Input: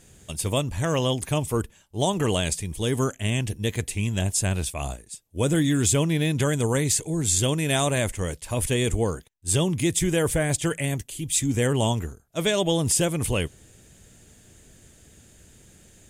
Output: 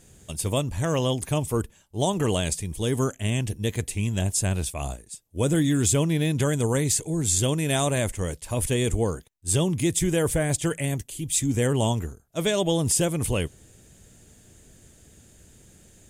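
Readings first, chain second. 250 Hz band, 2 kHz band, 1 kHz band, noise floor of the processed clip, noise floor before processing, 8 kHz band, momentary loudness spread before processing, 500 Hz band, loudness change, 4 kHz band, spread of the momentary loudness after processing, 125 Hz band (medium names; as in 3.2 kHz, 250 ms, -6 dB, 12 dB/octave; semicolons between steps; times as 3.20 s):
0.0 dB, -3.0 dB, -1.0 dB, -56 dBFS, -55 dBFS, -0.5 dB, 8 LU, -0.5 dB, -0.5 dB, -2.5 dB, 8 LU, 0.0 dB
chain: peaking EQ 2.3 kHz -3 dB 2.2 oct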